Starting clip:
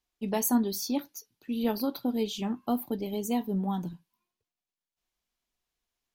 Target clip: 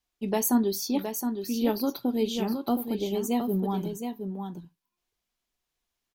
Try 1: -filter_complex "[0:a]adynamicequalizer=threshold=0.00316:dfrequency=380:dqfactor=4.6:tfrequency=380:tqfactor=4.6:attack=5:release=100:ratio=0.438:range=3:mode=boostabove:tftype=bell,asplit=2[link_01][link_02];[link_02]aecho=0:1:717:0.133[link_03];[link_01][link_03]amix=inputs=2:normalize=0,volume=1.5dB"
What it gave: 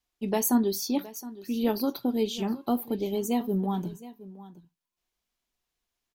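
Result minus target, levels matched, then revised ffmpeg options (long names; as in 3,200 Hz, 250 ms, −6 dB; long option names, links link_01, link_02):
echo-to-direct −10.5 dB
-filter_complex "[0:a]adynamicequalizer=threshold=0.00316:dfrequency=380:dqfactor=4.6:tfrequency=380:tqfactor=4.6:attack=5:release=100:ratio=0.438:range=3:mode=boostabove:tftype=bell,asplit=2[link_01][link_02];[link_02]aecho=0:1:717:0.447[link_03];[link_01][link_03]amix=inputs=2:normalize=0,volume=1.5dB"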